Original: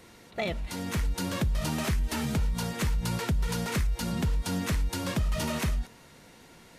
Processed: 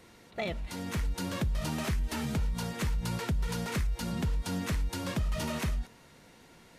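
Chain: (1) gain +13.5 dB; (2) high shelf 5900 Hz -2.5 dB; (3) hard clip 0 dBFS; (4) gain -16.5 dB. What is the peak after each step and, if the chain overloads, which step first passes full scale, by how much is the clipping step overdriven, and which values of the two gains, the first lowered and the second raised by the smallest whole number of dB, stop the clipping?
-5.5, -5.5, -5.5, -22.0 dBFS; no overload

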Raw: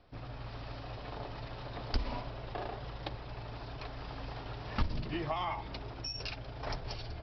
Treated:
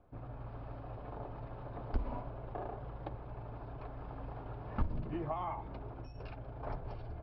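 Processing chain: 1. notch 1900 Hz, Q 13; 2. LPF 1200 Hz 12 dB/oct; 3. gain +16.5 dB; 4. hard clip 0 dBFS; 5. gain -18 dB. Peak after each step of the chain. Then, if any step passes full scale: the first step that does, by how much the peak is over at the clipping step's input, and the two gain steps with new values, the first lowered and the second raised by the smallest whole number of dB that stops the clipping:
-19.5, -20.0, -3.5, -3.5, -21.5 dBFS; no overload

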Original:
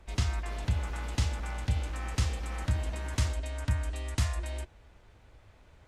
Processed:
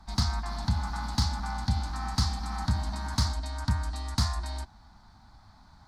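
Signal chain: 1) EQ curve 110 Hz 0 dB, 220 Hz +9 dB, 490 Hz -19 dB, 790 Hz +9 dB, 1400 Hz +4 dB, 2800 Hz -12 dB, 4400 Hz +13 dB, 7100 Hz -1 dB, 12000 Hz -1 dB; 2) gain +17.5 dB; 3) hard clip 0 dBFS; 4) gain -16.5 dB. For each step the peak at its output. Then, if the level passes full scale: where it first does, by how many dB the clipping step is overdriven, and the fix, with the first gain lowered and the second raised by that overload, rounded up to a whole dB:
-13.0, +4.5, 0.0, -16.5 dBFS; step 2, 4.5 dB; step 2 +12.5 dB, step 4 -11.5 dB

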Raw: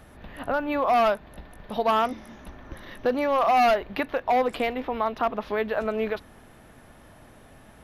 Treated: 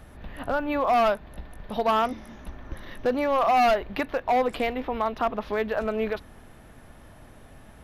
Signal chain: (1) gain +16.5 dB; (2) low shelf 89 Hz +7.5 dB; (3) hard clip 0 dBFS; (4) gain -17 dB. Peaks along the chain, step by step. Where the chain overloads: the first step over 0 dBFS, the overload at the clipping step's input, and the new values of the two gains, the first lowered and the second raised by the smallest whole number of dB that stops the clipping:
+4.0, +4.0, 0.0, -17.0 dBFS; step 1, 4.0 dB; step 1 +12.5 dB, step 4 -13 dB

